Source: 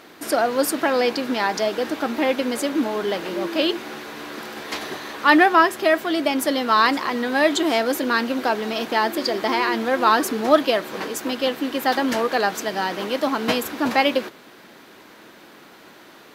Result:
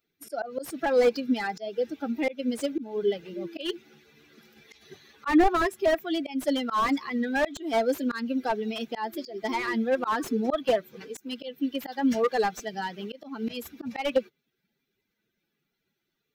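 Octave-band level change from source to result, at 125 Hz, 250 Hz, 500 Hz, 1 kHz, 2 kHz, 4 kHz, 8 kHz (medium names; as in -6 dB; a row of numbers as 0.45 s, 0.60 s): -5.0 dB, -5.0 dB, -5.5 dB, -9.5 dB, -11.0 dB, -12.0 dB, -12.5 dB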